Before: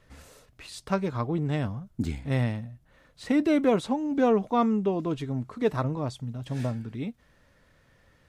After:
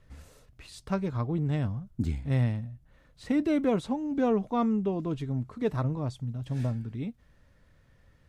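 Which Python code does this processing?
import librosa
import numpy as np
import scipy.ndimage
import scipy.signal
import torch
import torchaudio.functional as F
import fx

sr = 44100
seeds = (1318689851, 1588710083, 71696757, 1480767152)

y = fx.low_shelf(x, sr, hz=170.0, db=10.5)
y = F.gain(torch.from_numpy(y), -5.5).numpy()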